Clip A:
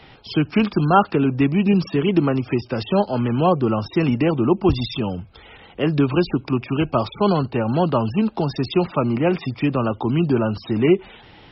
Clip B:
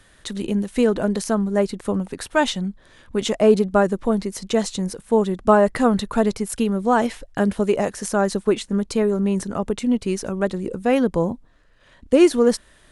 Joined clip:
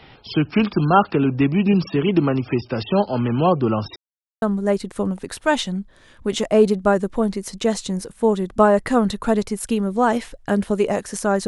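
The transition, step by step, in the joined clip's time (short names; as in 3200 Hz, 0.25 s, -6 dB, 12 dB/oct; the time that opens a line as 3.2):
clip A
3.96–4.42 mute
4.42 switch to clip B from 1.31 s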